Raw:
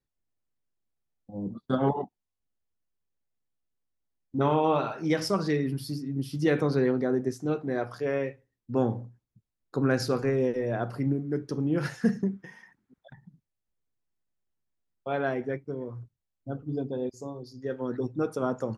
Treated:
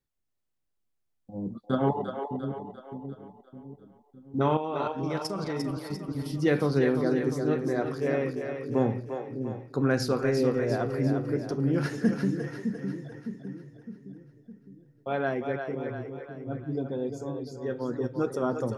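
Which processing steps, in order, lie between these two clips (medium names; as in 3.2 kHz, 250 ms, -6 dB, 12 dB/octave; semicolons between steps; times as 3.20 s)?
4.57–6.26 s: level held to a coarse grid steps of 16 dB; two-band feedback delay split 380 Hz, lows 610 ms, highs 348 ms, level -6 dB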